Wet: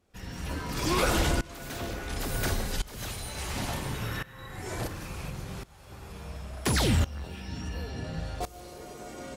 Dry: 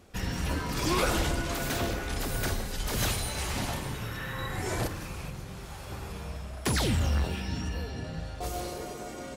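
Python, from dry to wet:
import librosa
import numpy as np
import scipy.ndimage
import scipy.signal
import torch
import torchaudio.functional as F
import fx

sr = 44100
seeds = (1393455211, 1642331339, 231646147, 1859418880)

y = fx.tremolo_shape(x, sr, shape='saw_up', hz=0.71, depth_pct=90)
y = F.gain(torch.from_numpy(y), 3.5).numpy()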